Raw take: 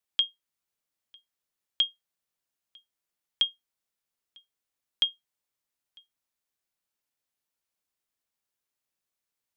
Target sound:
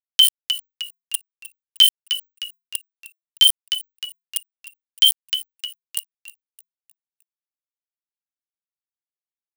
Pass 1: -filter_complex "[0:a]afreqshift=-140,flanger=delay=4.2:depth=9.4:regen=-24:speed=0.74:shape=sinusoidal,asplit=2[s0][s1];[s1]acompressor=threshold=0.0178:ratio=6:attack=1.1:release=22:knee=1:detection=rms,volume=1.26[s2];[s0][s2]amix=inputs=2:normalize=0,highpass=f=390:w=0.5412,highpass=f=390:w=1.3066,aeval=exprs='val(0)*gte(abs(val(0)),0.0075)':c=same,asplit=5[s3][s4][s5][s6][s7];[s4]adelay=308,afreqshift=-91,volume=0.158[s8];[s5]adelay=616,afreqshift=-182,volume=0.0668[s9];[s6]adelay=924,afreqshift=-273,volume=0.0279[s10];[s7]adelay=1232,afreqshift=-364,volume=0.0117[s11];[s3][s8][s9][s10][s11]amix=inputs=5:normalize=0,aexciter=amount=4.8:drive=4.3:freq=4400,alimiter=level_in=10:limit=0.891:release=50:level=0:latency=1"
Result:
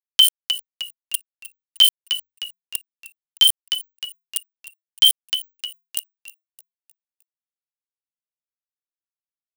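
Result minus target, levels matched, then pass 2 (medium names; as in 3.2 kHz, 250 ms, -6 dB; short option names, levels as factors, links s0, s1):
500 Hz band +11.0 dB
-filter_complex "[0:a]afreqshift=-140,flanger=delay=4.2:depth=9.4:regen=-24:speed=0.74:shape=sinusoidal,asplit=2[s0][s1];[s1]acompressor=threshold=0.0178:ratio=6:attack=1.1:release=22:knee=1:detection=rms,volume=1.26[s2];[s0][s2]amix=inputs=2:normalize=0,highpass=f=1300:w=0.5412,highpass=f=1300:w=1.3066,aeval=exprs='val(0)*gte(abs(val(0)),0.0075)':c=same,asplit=5[s3][s4][s5][s6][s7];[s4]adelay=308,afreqshift=-91,volume=0.158[s8];[s5]adelay=616,afreqshift=-182,volume=0.0668[s9];[s6]adelay=924,afreqshift=-273,volume=0.0279[s10];[s7]adelay=1232,afreqshift=-364,volume=0.0117[s11];[s3][s8][s9][s10][s11]amix=inputs=5:normalize=0,aexciter=amount=4.8:drive=4.3:freq=4400,alimiter=level_in=10:limit=0.891:release=50:level=0:latency=1"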